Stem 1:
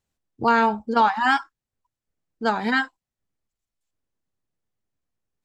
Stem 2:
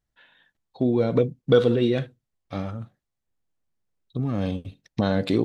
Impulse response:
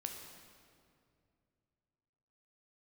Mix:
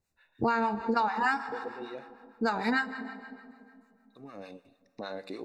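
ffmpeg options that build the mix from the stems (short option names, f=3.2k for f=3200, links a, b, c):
-filter_complex "[0:a]volume=-0.5dB,asplit=3[a][b][c];[b]volume=-4dB[d];[1:a]highpass=440,volume=-9.5dB,asplit=2[e][f];[f]volume=-10dB[g];[c]apad=whole_len=240293[h];[e][h]sidechaincompress=threshold=-32dB:ratio=8:attack=7.6:release=673[i];[2:a]atrim=start_sample=2205[j];[d][g]amix=inputs=2:normalize=0[k];[k][j]afir=irnorm=-1:irlink=0[l];[a][i][l]amix=inputs=3:normalize=0,acrossover=split=810[m][n];[m]aeval=exprs='val(0)*(1-0.7/2+0.7/2*cos(2*PI*6.6*n/s))':c=same[o];[n]aeval=exprs='val(0)*(1-0.7/2-0.7/2*cos(2*PI*6.6*n/s))':c=same[p];[o][p]amix=inputs=2:normalize=0,asuperstop=centerf=3200:order=12:qfactor=5.4,acompressor=threshold=-25dB:ratio=4"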